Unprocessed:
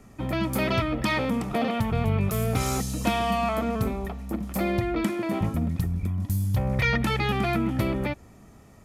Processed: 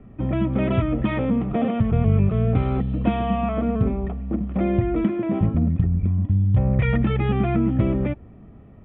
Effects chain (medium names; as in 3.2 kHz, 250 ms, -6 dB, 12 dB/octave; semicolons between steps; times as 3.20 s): steep low-pass 3.4 kHz 72 dB/octave; tilt shelf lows +7 dB, about 760 Hz; band-stop 890 Hz, Q 12